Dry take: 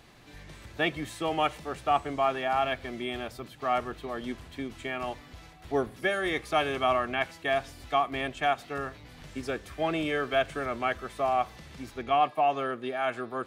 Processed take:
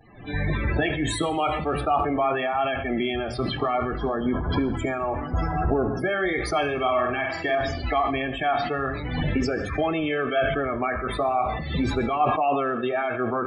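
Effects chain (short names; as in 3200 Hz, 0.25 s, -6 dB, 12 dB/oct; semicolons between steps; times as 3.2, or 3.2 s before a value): 3.93–4.69 delta modulation 32 kbps, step -35 dBFS; recorder AGC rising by 60 dB/s; 3.97–6.1 spectral gain 1700–4700 Hz -6 dB; 11.65–12.31 bell 3600 Hz +5 dB -> -6 dB 0.61 oct; loudest bins only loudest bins 32; flange 0.41 Hz, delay 8.9 ms, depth 8.2 ms, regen -57%; 6.75–7.55 flutter echo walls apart 8.4 m, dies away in 0.45 s; reverb RT60 0.80 s, pre-delay 61 ms, DRR 14 dB; sustainer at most 42 dB/s; gain +5.5 dB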